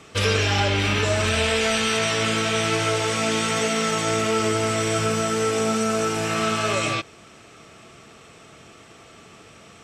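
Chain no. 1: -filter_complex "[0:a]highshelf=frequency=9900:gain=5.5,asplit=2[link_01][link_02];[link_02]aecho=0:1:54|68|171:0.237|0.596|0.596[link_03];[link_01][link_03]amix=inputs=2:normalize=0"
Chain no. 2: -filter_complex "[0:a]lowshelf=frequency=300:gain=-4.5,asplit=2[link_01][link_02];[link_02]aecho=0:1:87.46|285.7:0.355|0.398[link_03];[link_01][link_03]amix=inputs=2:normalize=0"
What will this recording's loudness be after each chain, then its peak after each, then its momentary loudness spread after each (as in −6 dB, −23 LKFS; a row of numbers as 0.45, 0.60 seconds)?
−18.5, −21.5 LKFS; −5.0, −9.0 dBFS; 3, 3 LU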